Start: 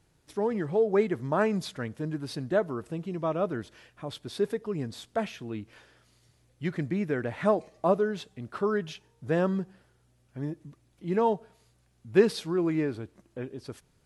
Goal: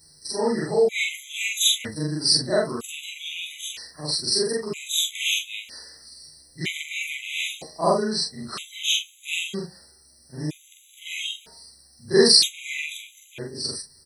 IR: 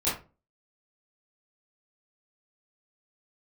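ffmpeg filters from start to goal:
-filter_complex "[0:a]afftfilt=real='re':imag='-im':win_size=4096:overlap=0.75,adynamicequalizer=threshold=0.00794:dfrequency=970:dqfactor=0.9:tfrequency=970:tqfactor=0.9:attack=5:release=100:ratio=0.375:range=1.5:mode=boostabove:tftype=bell,aexciter=amount=14:drive=2.1:freq=2.3k,asplit=2[a][b];[b]adelay=13,volume=-5dB[c];[a][c]amix=inputs=2:normalize=0,afftfilt=real='re*gt(sin(2*PI*0.52*pts/sr)*(1-2*mod(floor(b*sr/1024/2000),2)),0)':imag='im*gt(sin(2*PI*0.52*pts/sr)*(1-2*mod(floor(b*sr/1024/2000),2)),0)':win_size=1024:overlap=0.75,volume=6.5dB"

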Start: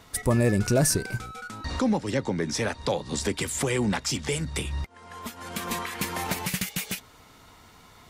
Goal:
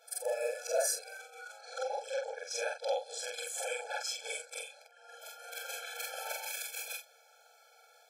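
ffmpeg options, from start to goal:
-af "afftfilt=real='re':imag='-im':win_size=4096:overlap=0.75,afftfilt=real='re*eq(mod(floor(b*sr/1024/440),2),1)':imag='im*eq(mod(floor(b*sr/1024/440),2),1)':win_size=1024:overlap=0.75"

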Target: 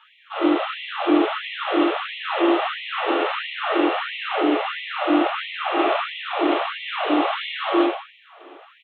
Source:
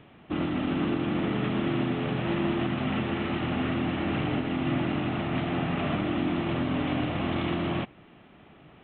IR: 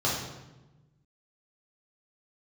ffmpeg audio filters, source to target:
-filter_complex "[0:a]asplit=2[a][b];[b]adelay=150,highpass=300,lowpass=3.4k,asoftclip=type=hard:threshold=-25.5dB,volume=-27dB[c];[a][c]amix=inputs=2:normalize=0[d];[1:a]atrim=start_sample=2205[e];[d][e]afir=irnorm=-1:irlink=0,afftfilt=real='re*gte(b*sr/1024,260*pow(1900/260,0.5+0.5*sin(2*PI*1.5*pts/sr)))':imag='im*gte(b*sr/1024,260*pow(1900/260,0.5+0.5*sin(2*PI*1.5*pts/sr)))':win_size=1024:overlap=0.75"

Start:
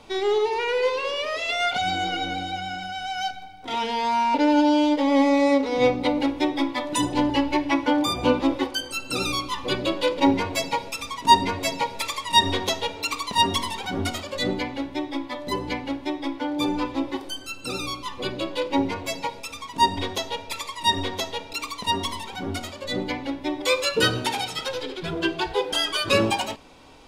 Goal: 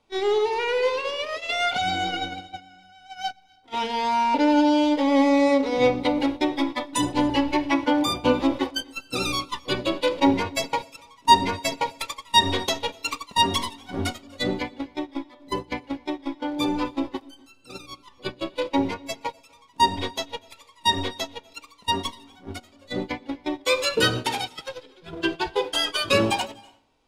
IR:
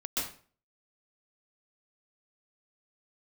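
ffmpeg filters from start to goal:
-filter_complex "[0:a]agate=range=-19dB:threshold=-27dB:ratio=16:detection=peak,asplit=2[a][b];[1:a]atrim=start_sample=2205,adelay=119[c];[b][c]afir=irnorm=-1:irlink=0,volume=-28.5dB[d];[a][d]amix=inputs=2:normalize=0"

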